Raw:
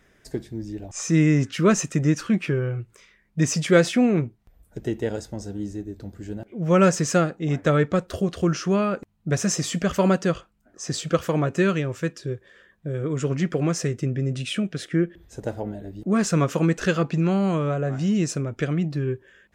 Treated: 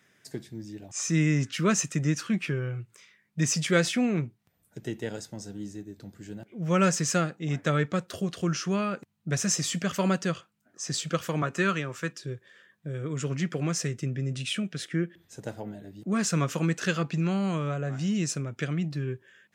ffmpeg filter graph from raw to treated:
-filter_complex "[0:a]asettb=1/sr,asplit=3[a][b][c];[a]atrim=end=11.424[d];[b]atrim=start=11.42:end=12.12,asetpts=PTS-STARTPTS,afade=t=in:d=0.004:c=qsin,afade=t=out:st=0.696:d=0.004:c=qsin,highpass=150,equalizer=f=1.2k:w=1.5:g=6.5[e];[c]atrim=start=12.116[f];[d][e]acrossfade=d=0.004:c1=hsin:c2=qsin[g];[g][f]acrossfade=d=0.004:c1=qsin:c2=hsin,highpass=f=120:w=0.5412,highpass=f=120:w=1.3066,equalizer=f=450:t=o:w=3:g=-8.5"

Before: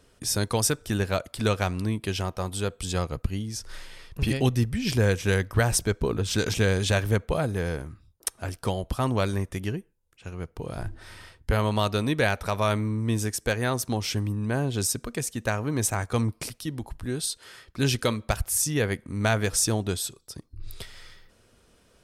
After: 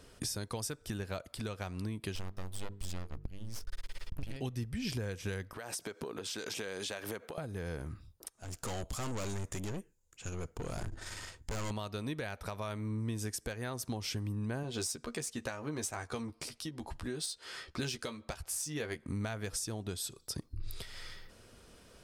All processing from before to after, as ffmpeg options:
-filter_complex "[0:a]asettb=1/sr,asplit=3[a][b][c];[a]atrim=end=2.154[d];[b]atrim=start=2.15:end=4.36,asetpts=PTS-STARTPTS,afade=t=in:d=0.004:c=qsin,afade=t=out:st=2.206:d=0.004:c=qsin,aeval=exprs='max(val(0),0)':c=same,lowshelf=f=76:g=11.5,bandreject=f=50:t=h:w=6,bandreject=f=100:t=h:w=6,bandreject=f=150:t=h:w=6,bandreject=f=200:t=h:w=6,bandreject=f=250:t=h:w=6,bandreject=f=300:t=h:w=6,bandreject=f=350:t=h:w=6,bandreject=f=400:t=h:w=6,bandreject=f=450:t=h:w=6[e];[c]atrim=start=4.356[f];[d][e]acrossfade=d=0.004:c1=hsin:c2=qsin[g];[g][f]acrossfade=d=0.004:c1=qsin:c2=hsin,asettb=1/sr,asplit=3[h][i][j];[h]atrim=end=5.534[k];[i]atrim=start=5.53:end=7.38,asetpts=PTS-STARTPTS,afade=t=in:d=0.004:c=qsin,afade=t=out:st=1.846:d=0.004:c=qsin,highpass=320,acompressor=threshold=-37dB:ratio=12:attack=3.2:release=140:knee=1:detection=peak[l];[j]atrim=start=7.376[m];[k][l]acrossfade=d=0.004:c1=hsin:c2=qsin[n];[n][m]acrossfade=d=0.004:c1=qsin:c2=hsin,asettb=1/sr,asplit=3[o][p][q];[o]atrim=end=8.334[r];[p]atrim=start=8.33:end=11.71,asetpts=PTS-STARTPTS,afade=t=in:d=0.004:c=qsin,afade=t=out:st=3.376:d=0.004:c=qsin,aeval=exprs='(tanh(70.8*val(0)+0.6)-tanh(0.6))/70.8':c=same,equalizer=f=7k:t=o:w=0.37:g=15[s];[q]atrim=start=11.706[t];[r][s]acrossfade=d=0.004:c1=hsin:c2=qsin[u];[u][t]acrossfade=d=0.004:c1=qsin:c2=hsin,asettb=1/sr,asplit=3[v][w][x];[v]atrim=end=14.634[y];[w]atrim=start=14.63:end=19.06,asetpts=PTS-STARTPTS,afade=t=in:d=0.004:c=qsin,afade=t=out:st=4.426:d=0.004:c=qsin,adynamicsmooth=sensitivity=4.5:basefreq=7.6k,bass=f=250:g=-6,treble=f=4k:g=4,asplit=2[z][aa];[aa]adelay=13,volume=-6.5dB[ab];[z][ab]amix=inputs=2:normalize=0,atrim=end_sample=195363[ac];[x]atrim=start=19.056[ad];[y][ac]acrossfade=d=0.004:c1=hsin:c2=qsin[ae];[ae][ad]acrossfade=d=0.004:c1=qsin:c2=hsin,equalizer=f=4.8k:w=6:g=2.5,acompressor=threshold=-36dB:ratio=10,alimiter=level_in=4dB:limit=-24dB:level=0:latency=1:release=457,volume=-4dB,volume=2.5dB"

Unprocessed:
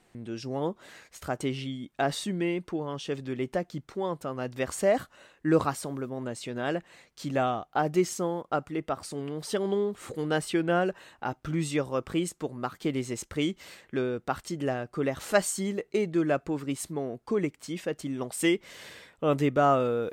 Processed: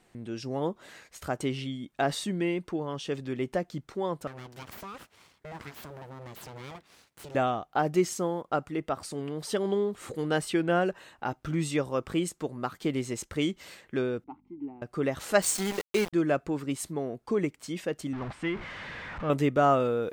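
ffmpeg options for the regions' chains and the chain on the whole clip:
-filter_complex "[0:a]asettb=1/sr,asplit=3[a][b][c];[a]atrim=end=4.274[d];[b]atrim=start=4.27:end=7.35,asetpts=PTS-STARTPTS,afade=t=in:d=0.004:c=qsin,afade=t=out:st=3.076:d=0.004:c=qsin,aeval=exprs='abs(val(0))':c=same,acompressor=threshold=-36dB:ratio=4:attack=3.2:release=140:knee=1:detection=peak,highpass=65[e];[c]atrim=start=7.346[f];[d][e]acrossfade=d=0.004:c1=hsin:c2=qsin[g];[g][f]acrossfade=d=0.004:c1=qsin:c2=hsin,asettb=1/sr,asplit=3[h][i][j];[h]atrim=end=14.244[k];[i]atrim=start=14.24:end=14.82,asetpts=PTS-STARTPTS,afade=t=in:d=0.004:c=qsin,afade=t=out:st=0.576:d=0.004:c=qsin,aeval=exprs='val(0)+0.00708*(sin(2*PI*50*n/s)+sin(2*PI*2*50*n/s)/2+sin(2*PI*3*50*n/s)/3+sin(2*PI*4*50*n/s)/4+sin(2*PI*5*50*n/s)/5)':c=same,asplit=3[l][m][n];[l]bandpass=f=300:t=q:w=8,volume=0dB[o];[m]bandpass=f=870:t=q:w=8,volume=-6dB[p];[n]bandpass=f=2.24k:t=q:w=8,volume=-9dB[q];[o][p][q]amix=inputs=3:normalize=0,adynamicsmooth=sensitivity=1.5:basefreq=1.2k[r];[j]atrim=start=14.816[s];[k][r]acrossfade=d=0.004:c1=hsin:c2=qsin[t];[t][s]acrossfade=d=0.004:c1=qsin:c2=hsin,asettb=1/sr,asplit=3[u][v][w];[u]atrim=end=15.424[x];[v]atrim=start=15.42:end=16.13,asetpts=PTS-STARTPTS,afade=t=in:d=0.004:c=qsin,afade=t=out:st=0.706:d=0.004:c=qsin,equalizer=f=4.1k:t=o:w=2.9:g=6,aeval=exprs='val(0)*gte(abs(val(0)),0.0316)':c=same[y];[w]atrim=start=16.126[z];[x][y]acrossfade=d=0.004:c1=hsin:c2=qsin[aa];[aa][z]acrossfade=d=0.004:c1=qsin:c2=hsin,asettb=1/sr,asplit=3[ab][ac][ad];[ab]atrim=end=18.134[ae];[ac]atrim=start=18.13:end=19.3,asetpts=PTS-STARTPTS,afade=t=in:d=0.004:c=qsin,afade=t=out:st=1.166:d=0.004:c=qsin,aeval=exprs='val(0)+0.5*0.0376*sgn(val(0))':c=same,lowpass=1.7k,equalizer=f=430:w=0.83:g=-11[af];[ad]atrim=start=19.296[ag];[ae][af]acrossfade=d=0.004:c1=hsin:c2=qsin[ah];[ah][ag]acrossfade=d=0.004:c1=qsin:c2=hsin"

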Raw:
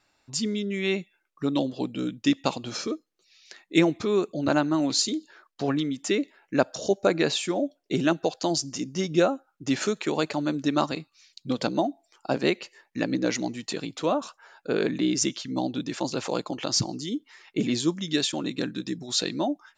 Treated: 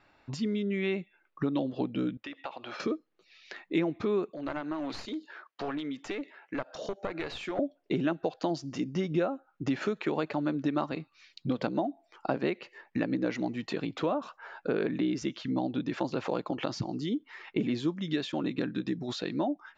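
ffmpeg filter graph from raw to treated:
-filter_complex "[0:a]asettb=1/sr,asplit=3[a][b][c];[a]atrim=end=2.174[d];[b]atrim=start=2.17:end=2.8,asetpts=PTS-STARTPTS,afade=t=in:d=0.004:c=qsin,afade=t=out:st=0.626:d=0.004:c=qsin,acrossover=split=460 4000:gain=0.0794 1 0.2[e][f][g];[e][f][g]amix=inputs=3:normalize=0,bandreject=f=460:w=8.6,acompressor=threshold=-42dB:ratio=5:attack=3.2:release=140:knee=1:detection=peak[h];[c]atrim=start=2.796[i];[d][h]acrossfade=d=0.004:c1=hsin:c2=qsin[j];[j][i]acrossfade=d=0.004:c1=qsin:c2=hsin,asettb=1/sr,asplit=3[k][l][m];[k]atrim=end=4.304[n];[l]atrim=start=4.3:end=7.59,asetpts=PTS-STARTPTS,afade=t=in:d=0.004:c=qsin,afade=t=out:st=3.286:d=0.004:c=qsin,highpass=f=620:p=1,aeval=exprs='clip(val(0),-1,0.0316)':c=same,acompressor=threshold=-41dB:ratio=2:attack=3.2:release=140:knee=1:detection=peak[o];[m]atrim=start=7.586[p];[n][o]acrossfade=d=0.004:c1=hsin:c2=qsin[q];[q][p]acrossfade=d=0.004:c1=qsin:c2=hsin,acompressor=threshold=-37dB:ratio=3,lowpass=2.5k,volume=7dB"

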